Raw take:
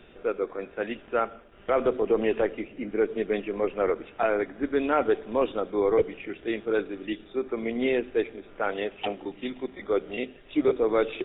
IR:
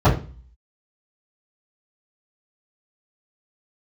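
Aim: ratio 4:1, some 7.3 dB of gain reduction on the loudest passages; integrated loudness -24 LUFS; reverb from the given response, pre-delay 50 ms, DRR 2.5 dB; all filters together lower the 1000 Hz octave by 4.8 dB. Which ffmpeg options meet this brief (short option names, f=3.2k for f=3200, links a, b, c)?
-filter_complex "[0:a]equalizer=f=1k:t=o:g=-7.5,acompressor=threshold=-28dB:ratio=4,asplit=2[a][b];[1:a]atrim=start_sample=2205,adelay=50[c];[b][c]afir=irnorm=-1:irlink=0,volume=-24.5dB[d];[a][d]amix=inputs=2:normalize=0,volume=5.5dB"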